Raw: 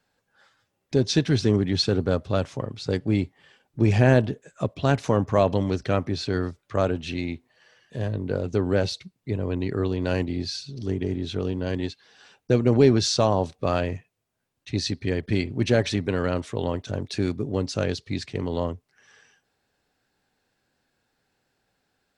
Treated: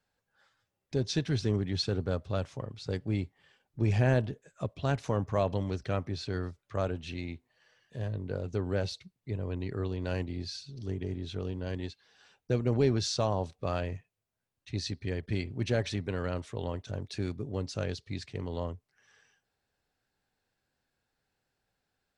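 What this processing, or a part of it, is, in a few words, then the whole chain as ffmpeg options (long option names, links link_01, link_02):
low shelf boost with a cut just above: -af "lowshelf=frequency=91:gain=6.5,equalizer=frequency=270:width_type=o:width=1.1:gain=-3,volume=-8.5dB"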